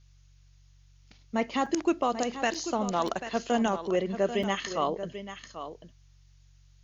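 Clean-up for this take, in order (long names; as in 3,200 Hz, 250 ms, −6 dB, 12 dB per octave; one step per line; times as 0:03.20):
hum removal 46.7 Hz, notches 3
repair the gap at 0:01.66/0:02.54/0:03.08/0:04.43, 4.7 ms
downward expander −50 dBFS, range −21 dB
echo removal 789 ms −11 dB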